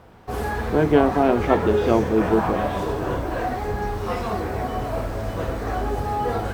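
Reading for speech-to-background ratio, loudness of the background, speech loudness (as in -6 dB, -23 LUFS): 5.0 dB, -26.0 LUFS, -21.0 LUFS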